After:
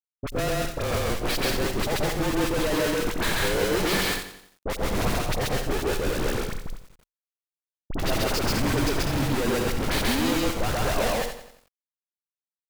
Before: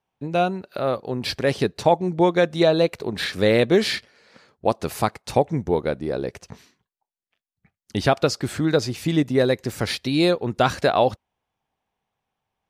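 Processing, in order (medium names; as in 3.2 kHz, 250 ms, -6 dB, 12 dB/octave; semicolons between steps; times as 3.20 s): high-pass 590 Hz 6 dB/octave; in parallel at +1 dB: compression 5:1, threshold -33 dBFS, peak gain reduction 17 dB; on the sum: Schmitt trigger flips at -24.5 dBFS; frequency shift -27 Hz; vibrato 1.5 Hz 11 cents; phase dispersion highs, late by 47 ms, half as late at 1.4 kHz; saturation -22.5 dBFS, distortion -14 dB; loudspeakers at several distances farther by 46 m 0 dB, 69 m -7 dB; bit-crushed delay 88 ms, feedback 55%, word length 8-bit, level -11.5 dB; trim +1 dB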